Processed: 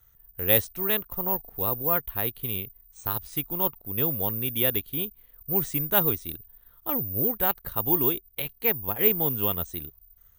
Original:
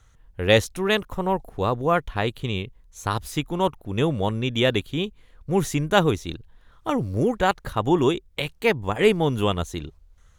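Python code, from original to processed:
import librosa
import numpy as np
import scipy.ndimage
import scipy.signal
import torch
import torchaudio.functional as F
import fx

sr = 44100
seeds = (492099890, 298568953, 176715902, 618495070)

y = (np.kron(scipy.signal.resample_poly(x, 1, 3), np.eye(3)[0]) * 3)[:len(x)]
y = F.gain(torch.from_numpy(y), -8.5).numpy()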